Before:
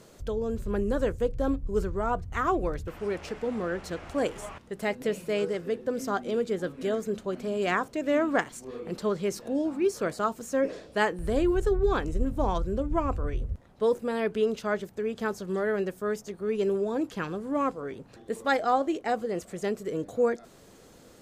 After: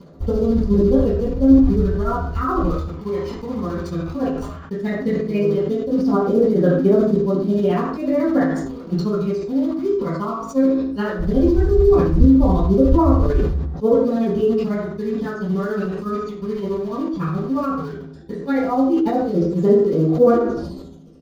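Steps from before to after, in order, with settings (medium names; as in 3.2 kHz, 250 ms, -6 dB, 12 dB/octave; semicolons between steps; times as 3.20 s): reverb removal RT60 0.8 s; low-pass that closes with the level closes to 2.3 kHz, closed at -22.5 dBFS; phaser 0.15 Hz, delay 1 ms, feedback 59%; in parallel at -3 dB: bit crusher 6-bit; on the sum: tremolo 14 Hz, depth 79%; speakerphone echo 80 ms, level -12 dB; reverberation RT60 0.50 s, pre-delay 3 ms, DRR -7 dB; decay stretcher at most 45 dB/s; trim -9.5 dB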